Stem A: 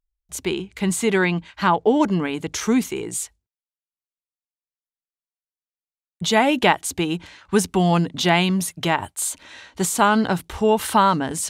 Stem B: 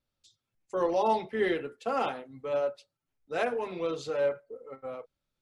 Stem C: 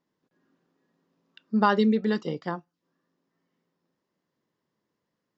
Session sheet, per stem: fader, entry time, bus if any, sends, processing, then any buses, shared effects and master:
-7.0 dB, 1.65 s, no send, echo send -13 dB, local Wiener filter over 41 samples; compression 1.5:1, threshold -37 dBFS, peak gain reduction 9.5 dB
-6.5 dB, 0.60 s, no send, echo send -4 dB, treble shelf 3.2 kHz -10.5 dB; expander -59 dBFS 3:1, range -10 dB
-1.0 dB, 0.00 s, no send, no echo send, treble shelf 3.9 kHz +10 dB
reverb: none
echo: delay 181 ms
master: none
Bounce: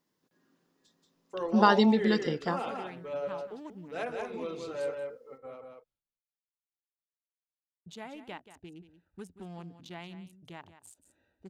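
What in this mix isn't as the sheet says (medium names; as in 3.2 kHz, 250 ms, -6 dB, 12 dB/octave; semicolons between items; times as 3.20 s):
stem A -7.0 dB -> -18.0 dB; stem B: missing treble shelf 3.2 kHz -10.5 dB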